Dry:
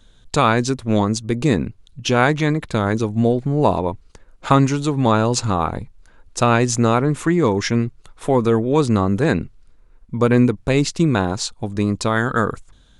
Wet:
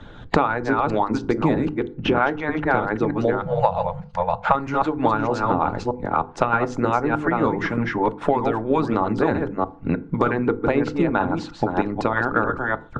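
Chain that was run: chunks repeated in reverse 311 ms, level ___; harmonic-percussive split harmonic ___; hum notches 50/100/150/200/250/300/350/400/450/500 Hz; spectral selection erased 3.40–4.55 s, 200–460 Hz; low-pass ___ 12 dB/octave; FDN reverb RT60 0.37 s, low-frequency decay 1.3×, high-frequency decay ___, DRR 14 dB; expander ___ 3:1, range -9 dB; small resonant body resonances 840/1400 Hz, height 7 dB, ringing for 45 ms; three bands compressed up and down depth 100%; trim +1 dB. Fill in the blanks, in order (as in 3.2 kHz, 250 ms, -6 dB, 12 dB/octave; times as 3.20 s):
-5 dB, -17 dB, 1.8 kHz, 0.6×, -42 dBFS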